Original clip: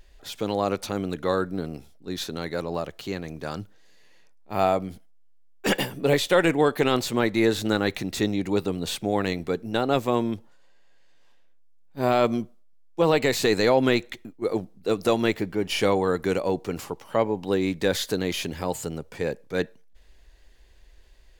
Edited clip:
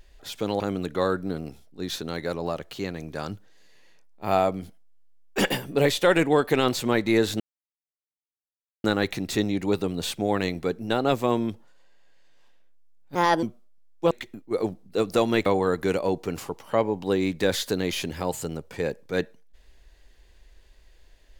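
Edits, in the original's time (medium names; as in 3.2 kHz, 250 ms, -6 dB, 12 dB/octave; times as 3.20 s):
0.60–0.88 s: delete
7.68 s: insert silence 1.44 s
11.99–12.38 s: speed 140%
13.06–14.02 s: delete
15.37–15.87 s: delete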